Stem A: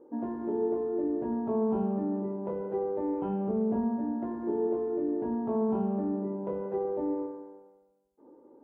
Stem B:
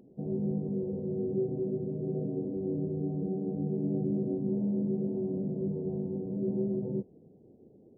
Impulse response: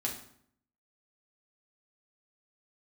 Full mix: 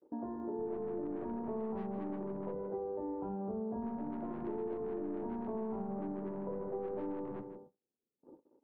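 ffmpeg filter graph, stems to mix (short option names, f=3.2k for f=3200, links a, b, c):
-filter_complex "[0:a]lowpass=1.1k,volume=-0.5dB[a];[1:a]highpass=f=230:p=1,aeval=exprs='(tanh(79.4*val(0)+0.35)-tanh(0.35))/79.4':c=same,adelay=400,volume=-2dB,asplit=3[b][c][d];[b]atrim=end=2.55,asetpts=PTS-STARTPTS,afade=t=out:st=2.546:d=0.004:c=hsin[e];[c]atrim=start=2.55:end=3.82,asetpts=PTS-STARTPTS,volume=0[f];[d]atrim=start=3.82,asetpts=PTS-STARTPTS,afade=t=in:d=0.004:c=hsin[g];[e][f][g]concat=n=3:v=0:a=1,asplit=3[h][i][j];[i]volume=-17.5dB[k];[j]volume=-11dB[l];[2:a]atrim=start_sample=2205[m];[k][m]afir=irnorm=-1:irlink=0[n];[l]aecho=0:1:156:1[o];[a][h][n][o]amix=inputs=4:normalize=0,agate=range=-34dB:threshold=-53dB:ratio=16:detection=peak,acrossover=split=80|650[p][q][r];[p]acompressor=threshold=-51dB:ratio=4[s];[q]acompressor=threshold=-40dB:ratio=4[t];[r]acompressor=threshold=-46dB:ratio=4[u];[s][t][u]amix=inputs=3:normalize=0"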